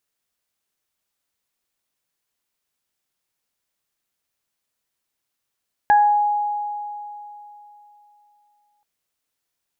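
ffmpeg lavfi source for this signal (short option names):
-f lavfi -i "aevalsrc='0.316*pow(10,-3*t/3.19)*sin(2*PI*830*t)+0.126*pow(10,-3*t/0.42)*sin(2*PI*1660*t)':d=2.93:s=44100"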